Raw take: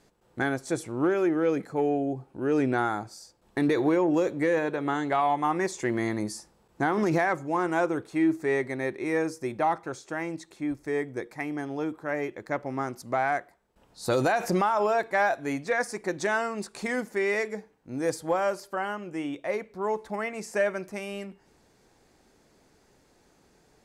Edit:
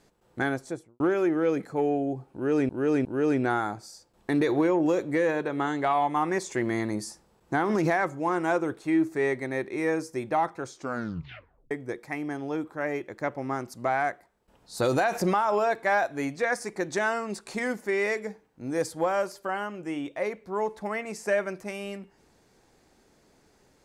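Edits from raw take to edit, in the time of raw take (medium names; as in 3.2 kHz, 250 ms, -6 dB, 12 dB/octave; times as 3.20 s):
0.49–1.00 s: studio fade out
2.33–2.69 s: loop, 3 plays
9.98 s: tape stop 1.01 s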